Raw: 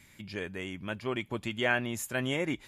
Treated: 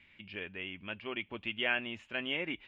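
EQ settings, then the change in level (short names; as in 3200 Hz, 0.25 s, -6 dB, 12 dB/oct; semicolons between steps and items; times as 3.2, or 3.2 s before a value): ladder low-pass 3100 Hz, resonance 65%; bell 130 Hz -13.5 dB 0.28 oct; +3.5 dB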